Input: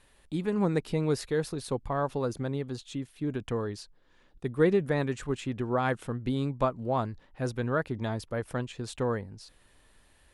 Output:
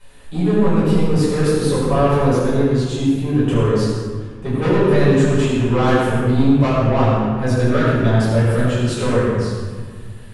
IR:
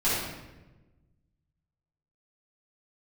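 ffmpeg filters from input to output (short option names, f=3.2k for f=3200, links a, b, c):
-filter_complex "[0:a]asoftclip=type=tanh:threshold=-27dB,asettb=1/sr,asplit=3[a][b][c];[a]atrim=end=0.734[d];[b]atrim=start=0.73:end=1.32,asetpts=PTS-STARTPTS,afade=t=in:d=0.004:c=qsin,afade=t=out:st=0.586:d=0.004:c=qsin,acrossover=split=320[e][f];[f]acompressor=threshold=-38dB:ratio=6[g];[e][g]amix=inputs=2:normalize=0[h];[c]atrim=start=1.316[i];[d][h]acrossfade=d=0.004:c1=hsin:c2=qsin[j];[j][i]acrossfade=d=0.004:c1=qsin:c2=hsin[k];[1:a]atrim=start_sample=2205,asetrate=26901,aresample=44100[l];[k][l]afir=irnorm=-1:irlink=0"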